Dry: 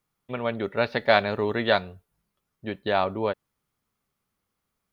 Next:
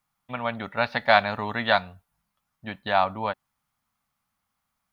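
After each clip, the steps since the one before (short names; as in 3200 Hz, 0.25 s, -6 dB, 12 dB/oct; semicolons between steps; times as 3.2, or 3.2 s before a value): EQ curve 260 Hz 0 dB, 380 Hz -13 dB, 770 Hz +7 dB, 2900 Hz +3 dB; gain -2 dB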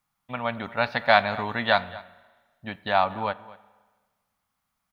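outdoor echo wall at 40 m, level -19 dB; spring tank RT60 1.4 s, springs 34/40 ms, chirp 25 ms, DRR 18.5 dB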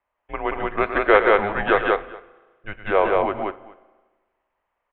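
loudspeakers at several distances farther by 38 m -11 dB, 62 m -2 dB; mistuned SSB -210 Hz 200–2900 Hz; gain +3 dB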